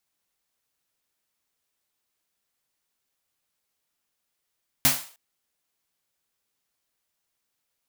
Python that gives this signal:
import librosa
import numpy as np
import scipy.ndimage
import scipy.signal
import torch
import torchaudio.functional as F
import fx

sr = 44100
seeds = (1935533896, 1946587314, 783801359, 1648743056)

y = fx.drum_snare(sr, seeds[0], length_s=0.31, hz=140.0, second_hz=260.0, noise_db=10, noise_from_hz=580.0, decay_s=0.26, noise_decay_s=0.42)